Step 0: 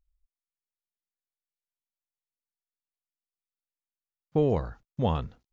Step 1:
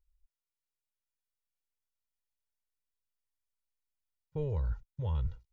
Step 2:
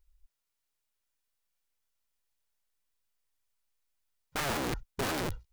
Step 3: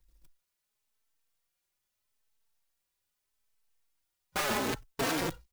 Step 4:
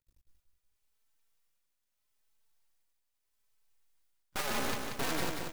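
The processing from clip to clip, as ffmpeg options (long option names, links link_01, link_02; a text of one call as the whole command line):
ffmpeg -i in.wav -af "aecho=1:1:2.1:0.88,asubboost=boost=7:cutoff=120,areverse,acompressor=threshold=-24dB:ratio=6,areverse,volume=-6dB" out.wav
ffmpeg -i in.wav -af "equalizer=frequency=150:width_type=o:width=3:gain=-2.5,aeval=exprs='(mod(56.2*val(0)+1,2)-1)/56.2':channel_layout=same,volume=8dB" out.wav
ffmpeg -i in.wav -filter_complex "[0:a]acrossover=split=150|550|5300[link_01][link_02][link_03][link_04];[link_01]acompressor=threshold=-49dB:ratio=6[link_05];[link_05][link_02][link_03][link_04]amix=inputs=4:normalize=0,acrusher=bits=3:mode=log:mix=0:aa=0.000001,asplit=2[link_06][link_07];[link_07]adelay=3.9,afreqshift=0.78[link_08];[link_06][link_08]amix=inputs=2:normalize=1,volume=5dB" out.wav
ffmpeg -i in.wav -af "aeval=exprs='max(val(0),0)':channel_layout=same,aecho=1:1:184|368|552|736|920|1104:0.562|0.264|0.124|0.0584|0.0274|0.0129" out.wav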